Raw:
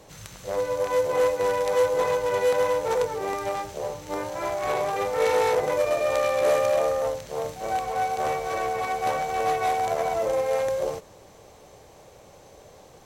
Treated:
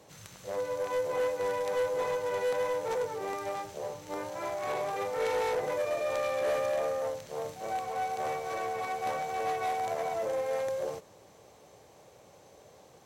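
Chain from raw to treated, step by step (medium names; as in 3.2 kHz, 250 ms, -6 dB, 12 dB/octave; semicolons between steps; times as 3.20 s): high-pass 92 Hz; saturation -17.5 dBFS, distortion -19 dB; trim -6 dB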